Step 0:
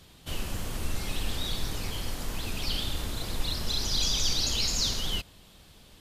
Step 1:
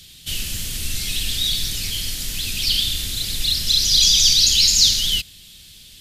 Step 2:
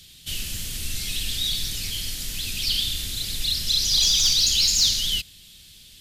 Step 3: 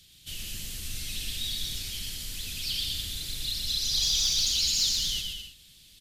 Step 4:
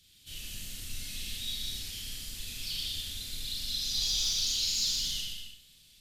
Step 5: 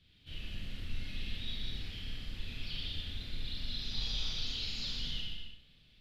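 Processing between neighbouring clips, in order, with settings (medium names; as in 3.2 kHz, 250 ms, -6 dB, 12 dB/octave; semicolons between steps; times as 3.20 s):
FFT filter 150 Hz 0 dB, 1 kHz -15 dB, 1.8 kHz +1 dB, 3.4 kHz +11 dB; trim +3.5 dB
saturation -5.5 dBFS, distortion -23 dB; trim -4 dB
bouncing-ball echo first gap 120 ms, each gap 0.7×, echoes 5; trim -8.5 dB
Schroeder reverb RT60 0.4 s, combs from 26 ms, DRR -0.5 dB; trim -7.5 dB
distance through air 390 m; trim +4 dB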